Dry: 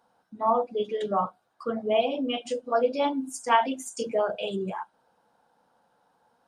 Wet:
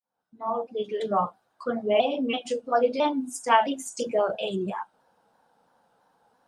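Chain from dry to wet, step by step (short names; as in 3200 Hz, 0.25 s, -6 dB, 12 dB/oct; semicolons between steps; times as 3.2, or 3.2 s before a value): opening faded in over 1.15 s; shaped vibrato saw down 3 Hz, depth 100 cents; gain +1.5 dB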